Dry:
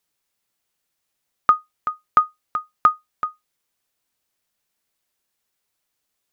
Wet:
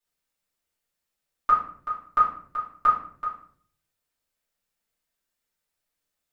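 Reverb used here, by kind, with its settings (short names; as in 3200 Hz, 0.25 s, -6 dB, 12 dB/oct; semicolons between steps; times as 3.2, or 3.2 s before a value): shoebox room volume 69 m³, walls mixed, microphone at 2.6 m; gain -16 dB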